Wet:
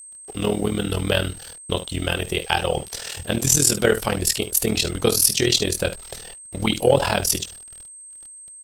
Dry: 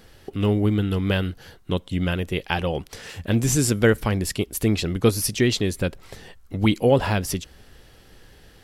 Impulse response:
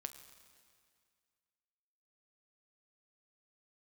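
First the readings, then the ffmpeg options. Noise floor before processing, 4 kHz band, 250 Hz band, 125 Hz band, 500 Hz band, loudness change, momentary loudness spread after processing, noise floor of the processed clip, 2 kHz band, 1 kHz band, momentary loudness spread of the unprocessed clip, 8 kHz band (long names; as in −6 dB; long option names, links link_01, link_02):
−51 dBFS, +7.0 dB, −3.5 dB, −4.0 dB, +1.5 dB, +2.0 dB, 19 LU, −42 dBFS, +2.0 dB, +3.0 dB, 12 LU, +9.0 dB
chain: -filter_complex "[0:a]asplit=2[link_01][link_02];[link_02]aecho=0:1:14|64:0.501|0.237[link_03];[link_01][link_03]amix=inputs=2:normalize=0,tremolo=f=40:d=0.857,equalizer=frequency=500:width_type=o:width=1:gain=-7,equalizer=frequency=1000:width_type=o:width=1:gain=-6,equalizer=frequency=2000:width_type=o:width=1:gain=-8,asplit=2[link_04][link_05];[link_05]alimiter=limit=-18dB:level=0:latency=1,volume=-2.5dB[link_06];[link_04][link_06]amix=inputs=2:normalize=0,lowshelf=frequency=370:width_type=q:width=1.5:gain=-10,agate=range=-33dB:threshold=-44dB:ratio=3:detection=peak,acontrast=30,acrusher=bits=7:mix=0:aa=0.5,aeval=exprs='val(0)+0.00794*sin(2*PI*8300*n/s)':channel_layout=same,volume=3dB"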